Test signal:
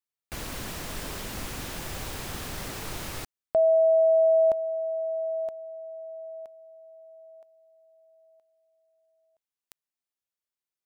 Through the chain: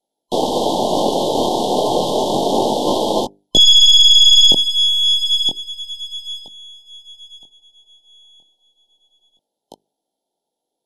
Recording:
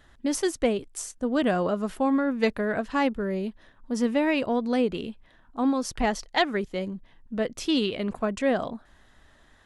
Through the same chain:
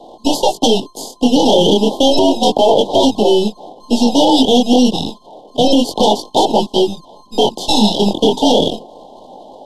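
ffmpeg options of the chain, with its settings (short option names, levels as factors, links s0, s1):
-filter_complex "[0:a]afftfilt=real='real(if(lt(b,960),b+48*(1-2*mod(floor(b/48),2)),b),0)':imag='imag(if(lt(b,960),b+48*(1-2*mod(floor(b/48),2)),b),0)':win_size=2048:overlap=0.75,highpass=95,aemphasis=mode=reproduction:type=75kf,bandreject=f=50:t=h:w=6,bandreject=f=100:t=h:w=6,bandreject=f=150:t=h:w=6,bandreject=f=200:t=h:w=6,bandreject=f=250:t=h:w=6,bandreject=f=300:t=h:w=6,bandreject=f=350:t=h:w=6,bandreject=f=400:t=h:w=6,aeval=exprs='0.251*(cos(1*acos(clip(val(0)/0.251,-1,1)))-cos(1*PI/2))+0.00178*(cos(3*acos(clip(val(0)/0.251,-1,1)))-cos(3*PI/2))+0.002*(cos(4*acos(clip(val(0)/0.251,-1,1)))-cos(4*PI/2))+0.0447*(cos(5*acos(clip(val(0)/0.251,-1,1)))-cos(5*PI/2))+0.1*(cos(6*acos(clip(val(0)/0.251,-1,1)))-cos(6*PI/2))':c=same,flanger=delay=18.5:depth=6:speed=0.3,aeval=exprs='max(val(0),0)':c=same,asuperstop=centerf=1700:order=20:qfactor=0.75,acrossover=split=210 2600:gain=0.0708 1 0.224[s0][s1][s2];[s0][s1][s2]amix=inputs=3:normalize=0,alimiter=level_in=35.5:limit=0.891:release=50:level=0:latency=1,volume=0.891" -ar 44100 -c:a mp2 -b:a 192k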